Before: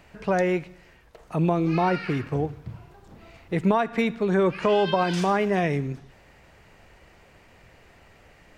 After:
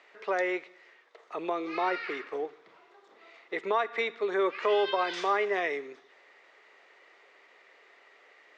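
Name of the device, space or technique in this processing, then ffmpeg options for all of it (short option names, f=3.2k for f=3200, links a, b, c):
phone speaker on a table: -af "highpass=f=370:w=0.5412,highpass=f=370:w=1.3066,equalizer=f=410:t=q:w=4:g=5,equalizer=f=1.2k:t=q:w=4:g=7,equalizer=f=2k:t=q:w=4:g=9,equalizer=f=3.6k:t=q:w=4:g=7,lowpass=f=6.8k:w=0.5412,lowpass=f=6.8k:w=1.3066,volume=-7dB"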